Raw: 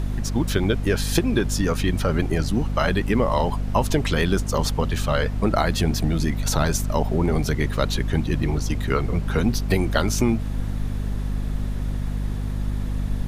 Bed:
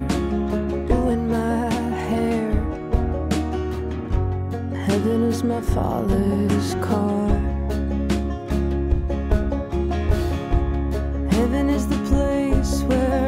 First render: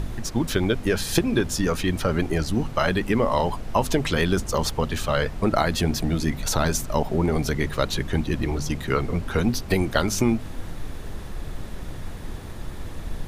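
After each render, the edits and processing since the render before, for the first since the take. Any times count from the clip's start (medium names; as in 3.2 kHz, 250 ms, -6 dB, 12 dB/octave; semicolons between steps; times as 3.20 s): de-hum 50 Hz, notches 5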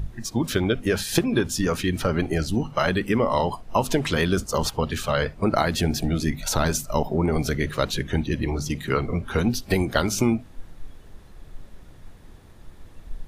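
noise print and reduce 13 dB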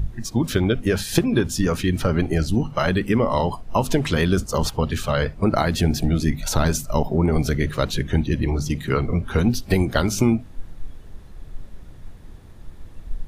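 bass shelf 240 Hz +6 dB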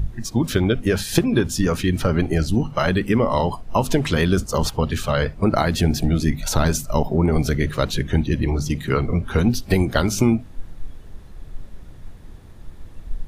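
trim +1 dB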